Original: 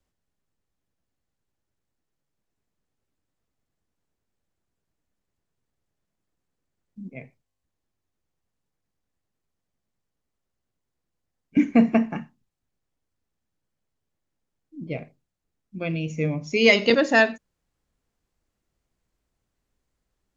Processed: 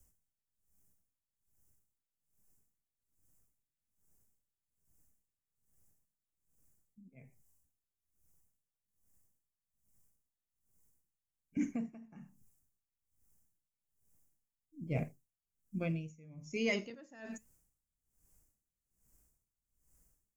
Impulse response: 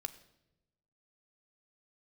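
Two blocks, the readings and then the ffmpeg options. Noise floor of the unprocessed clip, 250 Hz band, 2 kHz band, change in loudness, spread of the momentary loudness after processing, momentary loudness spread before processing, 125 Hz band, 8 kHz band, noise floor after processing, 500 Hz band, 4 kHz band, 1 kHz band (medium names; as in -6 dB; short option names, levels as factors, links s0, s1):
-82 dBFS, -17.0 dB, -21.0 dB, -18.5 dB, 18 LU, 19 LU, -10.0 dB, no reading, under -85 dBFS, -19.5 dB, -21.0 dB, -24.0 dB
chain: -filter_complex "[0:a]acrossover=split=5200[s0][s1];[s1]acompressor=threshold=0.00251:ratio=4:attack=1:release=60[s2];[s0][s2]amix=inputs=2:normalize=0,bass=f=250:g=8,treble=f=4000:g=-8,alimiter=limit=0.299:level=0:latency=1:release=177,areverse,acompressor=threshold=0.0355:ratio=6,areverse,flanger=delay=0.3:depth=4.9:regen=87:speed=0.61:shape=sinusoidal,aexciter=amount=8.4:drive=9.6:freq=6000,aeval=exprs='val(0)*pow(10,-24*(0.5-0.5*cos(2*PI*1.2*n/s))/20)':c=same,volume=1.5"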